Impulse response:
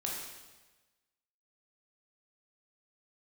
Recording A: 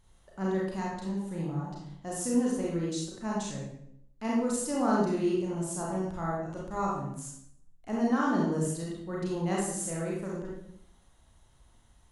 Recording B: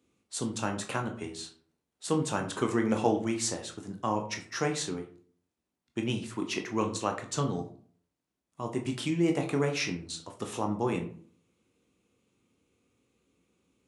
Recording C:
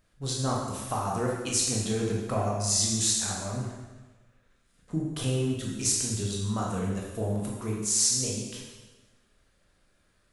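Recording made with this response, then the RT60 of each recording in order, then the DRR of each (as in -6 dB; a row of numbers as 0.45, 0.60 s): C; 0.70, 0.45, 1.2 s; -4.5, 3.5, -3.0 dB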